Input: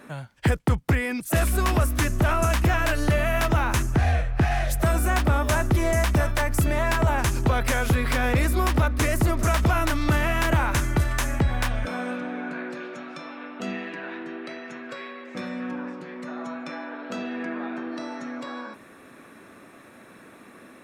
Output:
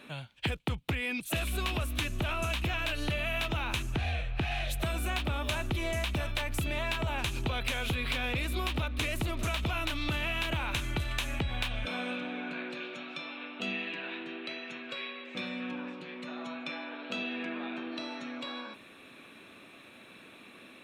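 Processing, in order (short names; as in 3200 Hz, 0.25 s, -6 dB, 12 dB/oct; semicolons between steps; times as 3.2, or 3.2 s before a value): band shelf 3100 Hz +12.5 dB 1 oct; compressor, threshold -22 dBFS, peak gain reduction 7 dB; gain -6.5 dB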